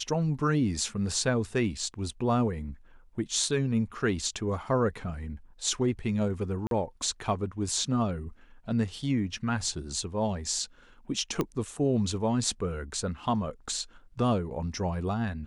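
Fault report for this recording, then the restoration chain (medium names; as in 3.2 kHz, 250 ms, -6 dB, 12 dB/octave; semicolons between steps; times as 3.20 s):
6.67–6.71 s: dropout 42 ms
11.41 s: pop -15 dBFS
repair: de-click; interpolate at 6.67 s, 42 ms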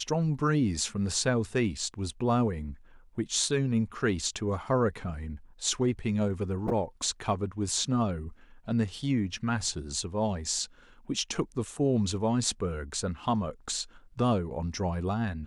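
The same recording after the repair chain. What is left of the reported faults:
nothing left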